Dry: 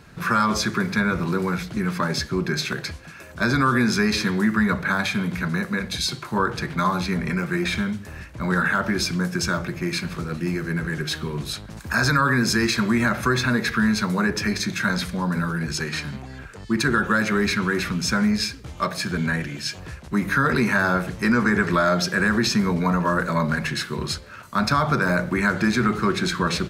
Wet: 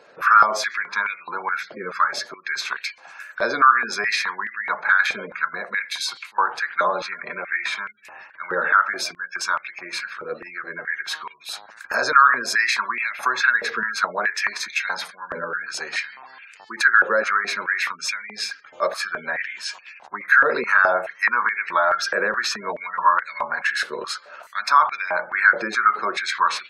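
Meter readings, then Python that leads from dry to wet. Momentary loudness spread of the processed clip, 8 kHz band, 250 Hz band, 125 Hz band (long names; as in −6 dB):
15 LU, −2.5 dB, −20.0 dB, below −25 dB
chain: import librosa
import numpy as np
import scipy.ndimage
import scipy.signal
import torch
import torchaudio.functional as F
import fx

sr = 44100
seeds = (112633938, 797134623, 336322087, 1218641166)

y = fx.spec_gate(x, sr, threshold_db=-30, keep='strong')
y = fx.filter_held_highpass(y, sr, hz=4.7, low_hz=530.0, high_hz=2400.0)
y = y * 10.0 ** (-2.0 / 20.0)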